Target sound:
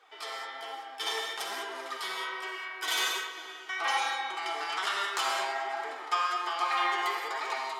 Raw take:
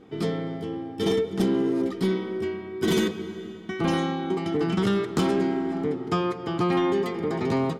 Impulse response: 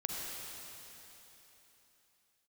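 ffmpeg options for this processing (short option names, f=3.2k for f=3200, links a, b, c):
-filter_complex "[0:a]asplit=2[a][b];[b]alimiter=level_in=1dB:limit=-24dB:level=0:latency=1,volume=-1dB,volume=1dB[c];[a][c]amix=inputs=2:normalize=0,dynaudnorm=f=120:g=7:m=3.5dB[d];[1:a]atrim=start_sample=2205,afade=t=out:st=0.26:d=0.01,atrim=end_sample=11907[e];[d][e]afir=irnorm=-1:irlink=0,flanger=delay=1.7:depth=8.8:regen=47:speed=1.2:shape=triangular,highpass=f=810:w=0.5412,highpass=f=810:w=1.3066"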